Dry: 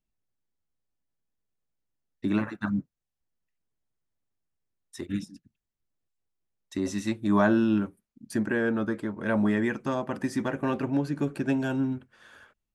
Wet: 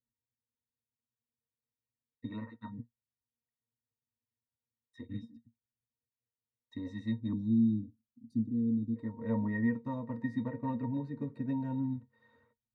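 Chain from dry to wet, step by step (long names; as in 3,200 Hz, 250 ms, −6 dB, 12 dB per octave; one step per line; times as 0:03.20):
0:02.25–0:02.79: low-shelf EQ 330 Hz −9.5 dB
0:07.33–0:08.96: elliptic band-stop filter 320–4,200 Hz, stop band 40 dB
resonances in every octave A#, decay 0.11 s
level +2 dB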